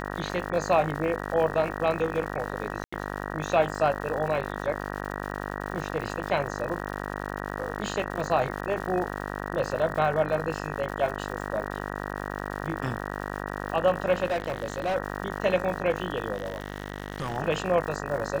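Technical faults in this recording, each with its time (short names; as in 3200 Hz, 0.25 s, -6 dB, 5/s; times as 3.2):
buzz 50 Hz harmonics 38 -34 dBFS
crackle 210/s -36 dBFS
2.84–2.92 gap 85 ms
14.28–14.96 clipped -23.5 dBFS
16.33–17.38 clipped -25.5 dBFS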